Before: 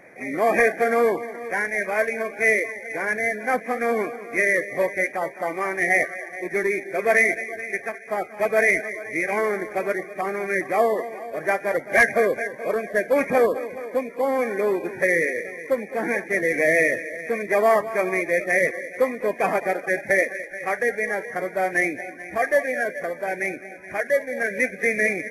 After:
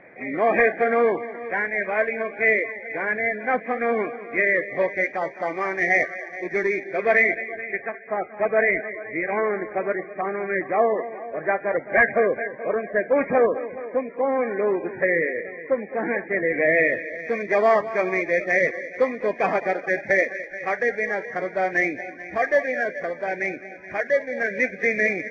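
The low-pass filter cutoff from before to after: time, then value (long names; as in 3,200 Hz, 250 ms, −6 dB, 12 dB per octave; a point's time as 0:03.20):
low-pass filter 24 dB per octave
0:04.57 3,100 Hz
0:05.25 5,300 Hz
0:06.70 5,300 Hz
0:08.03 2,100 Hz
0:16.51 2,100 Hz
0:17.32 5,300 Hz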